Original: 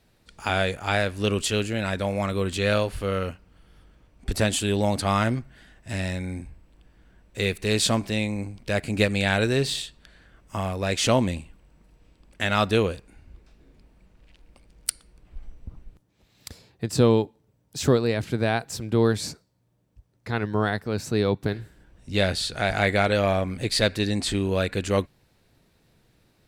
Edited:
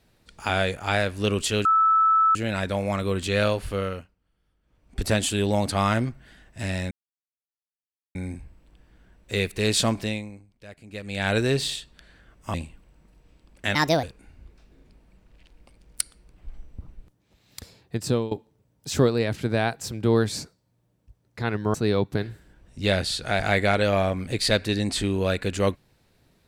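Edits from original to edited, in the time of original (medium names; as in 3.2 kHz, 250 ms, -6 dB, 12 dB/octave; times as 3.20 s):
1.65 s: add tone 1.31 kHz -15.5 dBFS 0.70 s
3.05–4.33 s: dip -18 dB, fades 0.41 s
6.21 s: insert silence 1.24 s
8.09–9.39 s: dip -19 dB, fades 0.48 s quadratic
10.60–11.30 s: delete
12.51–12.92 s: speed 145%
16.86–17.20 s: fade out, to -18.5 dB
20.63–21.05 s: delete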